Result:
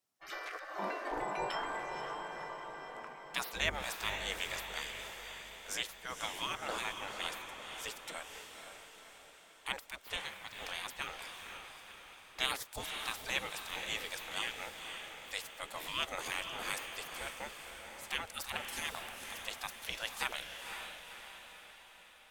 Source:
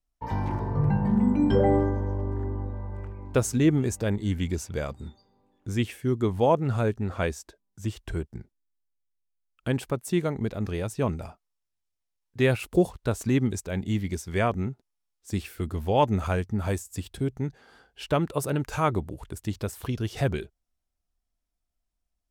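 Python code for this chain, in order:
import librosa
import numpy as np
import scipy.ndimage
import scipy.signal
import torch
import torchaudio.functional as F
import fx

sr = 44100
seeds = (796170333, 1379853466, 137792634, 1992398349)

y = fx.bandpass_edges(x, sr, low_hz=430.0, high_hz=6600.0, at=(10.16, 10.6))
y = fx.spec_gate(y, sr, threshold_db=-25, keep='weak')
y = fx.echo_diffused(y, sr, ms=519, feedback_pct=55, wet_db=-6.0)
y = y * librosa.db_to_amplitude(5.5)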